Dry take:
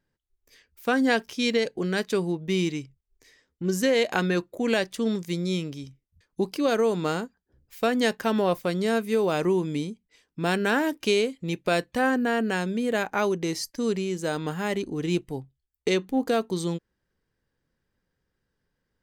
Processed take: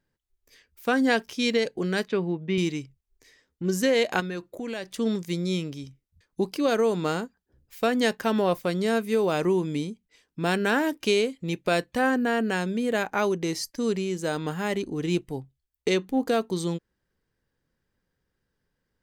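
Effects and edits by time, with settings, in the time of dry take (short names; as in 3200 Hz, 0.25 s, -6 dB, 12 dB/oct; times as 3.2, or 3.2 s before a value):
2.08–2.58 Chebyshev band-pass 120–2600 Hz
4.2–4.96 compressor 3:1, threshold -32 dBFS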